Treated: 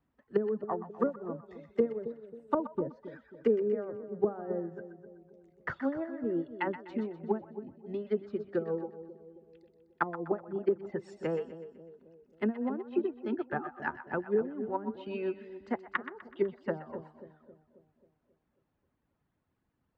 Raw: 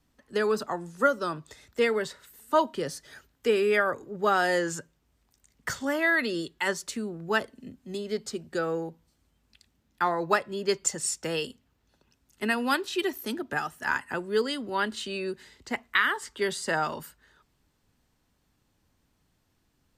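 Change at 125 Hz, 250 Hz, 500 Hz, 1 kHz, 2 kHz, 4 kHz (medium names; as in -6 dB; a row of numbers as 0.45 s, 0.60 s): -3.0 dB, -1.0 dB, -3.5 dB, -9.5 dB, -14.0 dB, under -20 dB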